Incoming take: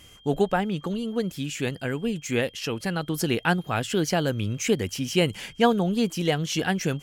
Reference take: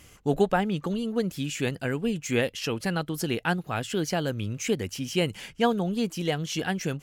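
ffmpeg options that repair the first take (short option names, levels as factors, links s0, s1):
-af "bandreject=f=3200:w=30,asetnsamples=n=441:p=0,asendcmd='3.03 volume volume -3.5dB',volume=1"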